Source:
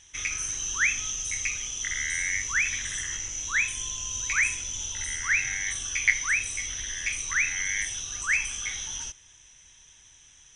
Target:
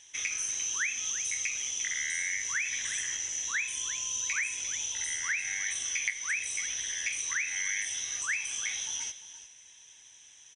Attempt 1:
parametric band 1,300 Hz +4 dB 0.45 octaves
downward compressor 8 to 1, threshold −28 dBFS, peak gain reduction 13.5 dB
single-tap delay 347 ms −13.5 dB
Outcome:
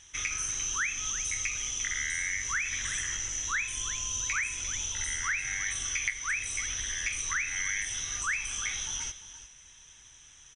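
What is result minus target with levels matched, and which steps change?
1,000 Hz band +7.5 dB; 500 Hz band +3.0 dB
change: parametric band 1,300 Hz −7 dB 0.45 octaves
add after downward compressor: high-pass filter 490 Hz 6 dB per octave

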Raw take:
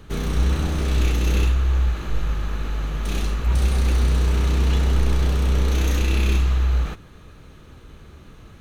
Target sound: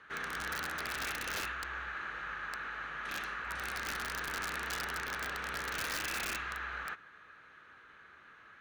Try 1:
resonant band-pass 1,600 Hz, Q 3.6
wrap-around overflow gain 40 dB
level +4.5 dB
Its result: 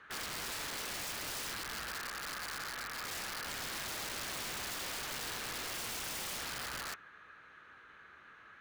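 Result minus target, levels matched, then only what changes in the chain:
wrap-around overflow: distortion +17 dB
change: wrap-around overflow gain 34 dB

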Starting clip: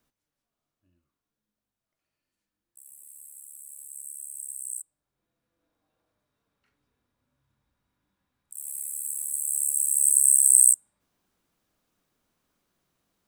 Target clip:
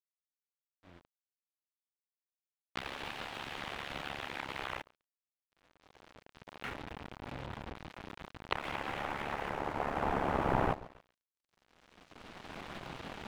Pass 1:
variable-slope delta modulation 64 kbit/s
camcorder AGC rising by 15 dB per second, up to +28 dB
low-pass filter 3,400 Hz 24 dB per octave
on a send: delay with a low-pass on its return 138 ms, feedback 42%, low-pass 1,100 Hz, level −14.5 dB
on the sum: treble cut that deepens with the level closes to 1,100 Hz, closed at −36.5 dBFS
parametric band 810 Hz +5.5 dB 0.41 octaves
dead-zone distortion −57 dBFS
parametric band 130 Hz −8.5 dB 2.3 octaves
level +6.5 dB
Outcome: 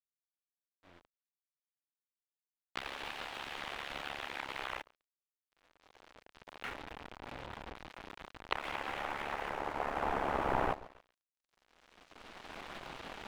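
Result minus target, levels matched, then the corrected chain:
125 Hz band −6.0 dB
variable-slope delta modulation 64 kbit/s
camcorder AGC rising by 15 dB per second, up to +28 dB
low-pass filter 3,400 Hz 24 dB per octave
on a send: delay with a low-pass on its return 138 ms, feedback 42%, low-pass 1,100 Hz, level −14.5 dB
on the sum: treble cut that deepens with the level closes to 1,100 Hz, closed at −36.5 dBFS
parametric band 810 Hz +5.5 dB 0.41 octaves
dead-zone distortion −57 dBFS
level +6.5 dB

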